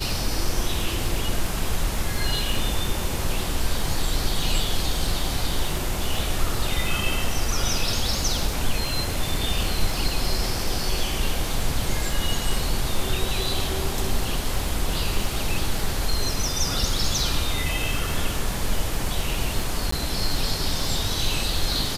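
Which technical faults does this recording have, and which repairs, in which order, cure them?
crackle 43 per s -29 dBFS
19.91–19.92 s: dropout 14 ms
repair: de-click; interpolate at 19.91 s, 14 ms

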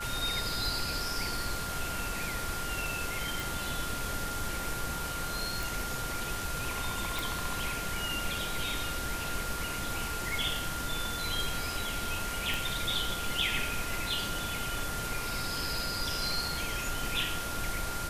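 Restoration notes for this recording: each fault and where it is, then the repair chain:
whine 1.4 kHz -38 dBFS
3.40 s: pop
5.63 s: pop
7.19 s: pop
12.54 s: pop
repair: de-click; band-stop 1.4 kHz, Q 30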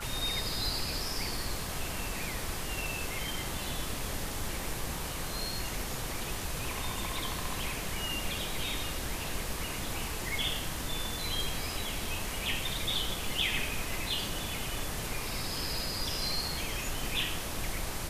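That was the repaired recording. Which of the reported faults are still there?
nothing left

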